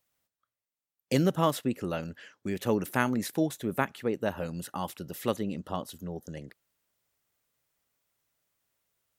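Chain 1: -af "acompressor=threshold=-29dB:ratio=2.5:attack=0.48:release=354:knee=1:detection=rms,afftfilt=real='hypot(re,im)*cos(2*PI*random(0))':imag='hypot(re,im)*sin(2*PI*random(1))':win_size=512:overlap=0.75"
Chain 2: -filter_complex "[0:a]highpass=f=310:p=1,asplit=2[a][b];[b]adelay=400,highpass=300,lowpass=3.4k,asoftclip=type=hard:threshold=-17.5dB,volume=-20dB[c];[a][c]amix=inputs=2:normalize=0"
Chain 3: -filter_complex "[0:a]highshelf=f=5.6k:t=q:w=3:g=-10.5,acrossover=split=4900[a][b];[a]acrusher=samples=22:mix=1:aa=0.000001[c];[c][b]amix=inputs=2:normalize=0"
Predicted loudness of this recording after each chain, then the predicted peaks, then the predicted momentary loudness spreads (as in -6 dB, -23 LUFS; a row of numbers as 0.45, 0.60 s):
-44.5, -33.5, -31.0 LUFS; -25.5, -9.5, -9.5 dBFS; 6, 14, 13 LU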